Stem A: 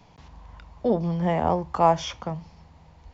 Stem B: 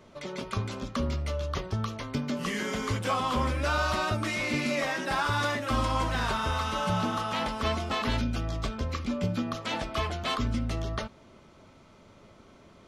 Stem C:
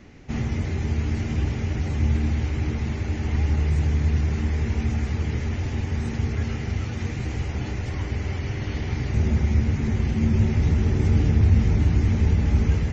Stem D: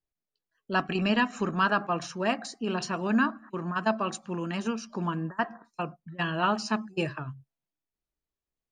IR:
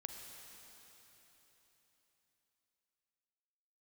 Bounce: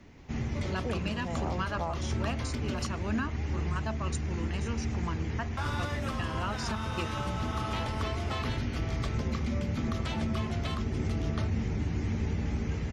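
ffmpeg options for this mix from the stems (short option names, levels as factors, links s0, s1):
-filter_complex "[0:a]volume=0.282[s0];[1:a]acompressor=threshold=0.0316:ratio=6,adelay=400,volume=0.841,asplit=3[s1][s2][s3];[s1]atrim=end=2.87,asetpts=PTS-STARTPTS,afade=t=out:st=2.866:d=0.004:c=hsin[s4];[s2]atrim=start=2.87:end=5.57,asetpts=PTS-STARTPTS,volume=0[s5];[s3]atrim=start=5.57,asetpts=PTS-STARTPTS,afade=t=in:d=0.004:c=hsin[s6];[s4][s5][s6]concat=n=3:v=0:a=1[s7];[2:a]acrossover=split=140|3000[s8][s9][s10];[s8]acompressor=threshold=0.0631:ratio=6[s11];[s11][s9][s10]amix=inputs=3:normalize=0,volume=0.473[s12];[3:a]aemphasis=mode=production:type=50kf,volume=0.447[s13];[s0][s7][s12][s13]amix=inputs=4:normalize=0,alimiter=limit=0.0841:level=0:latency=1:release=305"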